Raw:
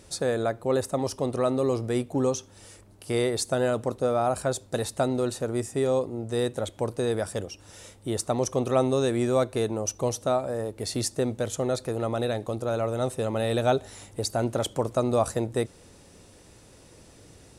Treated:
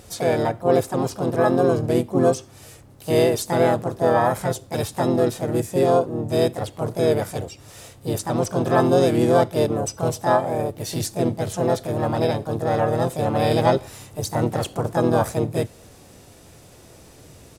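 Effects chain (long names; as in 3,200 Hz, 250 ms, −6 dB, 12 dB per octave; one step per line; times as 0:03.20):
harmonic and percussive parts rebalanced percussive −7 dB
pitch-shifted copies added −3 semitones −8 dB, +5 semitones −2 dB
level +5 dB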